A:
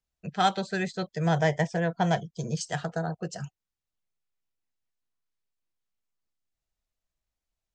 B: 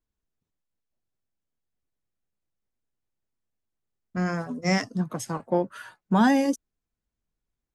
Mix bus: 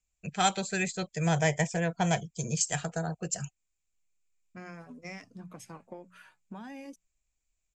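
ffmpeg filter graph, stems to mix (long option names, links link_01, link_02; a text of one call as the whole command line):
ffmpeg -i stem1.wav -i stem2.wav -filter_complex "[0:a]lowpass=frequency=7300:width_type=q:width=8.7,lowshelf=frequency=68:gain=11.5,volume=-3.5dB[link_01];[1:a]bandreject=frequency=60:width_type=h:width=6,bandreject=frequency=120:width_type=h:width=6,bandreject=frequency=180:width_type=h:width=6,acompressor=threshold=-27dB:ratio=16,adelay=400,volume=-13.5dB[link_02];[link_01][link_02]amix=inputs=2:normalize=0,equalizer=frequency=2400:width_type=o:width=0.33:gain=12" out.wav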